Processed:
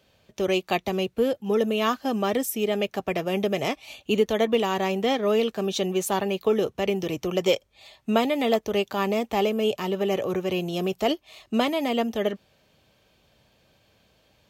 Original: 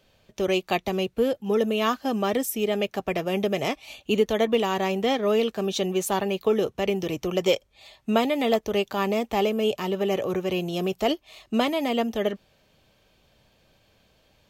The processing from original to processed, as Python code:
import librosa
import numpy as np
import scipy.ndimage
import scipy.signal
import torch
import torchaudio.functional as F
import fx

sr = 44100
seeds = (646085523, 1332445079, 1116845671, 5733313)

y = scipy.signal.sosfilt(scipy.signal.butter(2, 50.0, 'highpass', fs=sr, output='sos'), x)